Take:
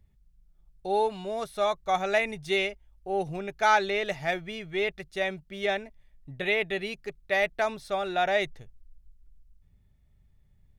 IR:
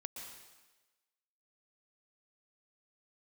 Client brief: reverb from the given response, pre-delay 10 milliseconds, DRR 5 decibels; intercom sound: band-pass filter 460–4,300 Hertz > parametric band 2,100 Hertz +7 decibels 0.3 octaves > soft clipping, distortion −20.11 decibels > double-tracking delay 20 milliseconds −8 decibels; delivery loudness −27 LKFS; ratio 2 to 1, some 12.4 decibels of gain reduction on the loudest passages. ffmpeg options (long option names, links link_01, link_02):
-filter_complex "[0:a]acompressor=threshold=-41dB:ratio=2,asplit=2[link_01][link_02];[1:a]atrim=start_sample=2205,adelay=10[link_03];[link_02][link_03]afir=irnorm=-1:irlink=0,volume=-2.5dB[link_04];[link_01][link_04]amix=inputs=2:normalize=0,highpass=460,lowpass=4300,equalizer=frequency=2100:width_type=o:width=0.3:gain=7,asoftclip=threshold=-25dB,asplit=2[link_05][link_06];[link_06]adelay=20,volume=-8dB[link_07];[link_05][link_07]amix=inputs=2:normalize=0,volume=9.5dB"